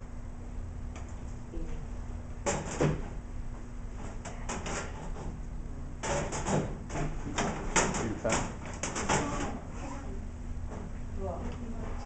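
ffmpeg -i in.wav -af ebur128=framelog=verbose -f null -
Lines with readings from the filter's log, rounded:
Integrated loudness:
  I:         -35.8 LUFS
  Threshold: -45.8 LUFS
Loudness range:
  LRA:         5.2 LU
  Threshold: -55.0 LUFS
  LRA low:   -37.7 LUFS
  LRA high:  -32.5 LUFS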